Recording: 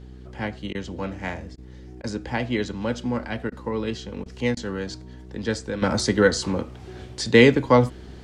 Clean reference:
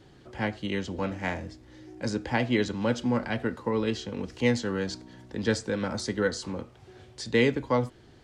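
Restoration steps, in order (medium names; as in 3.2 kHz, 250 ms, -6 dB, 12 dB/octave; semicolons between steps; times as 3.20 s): de-hum 62.8 Hz, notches 7; interpolate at 0.73/1.56/2.02/3.50/4.24/4.55 s, 17 ms; gain correction -9 dB, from 5.82 s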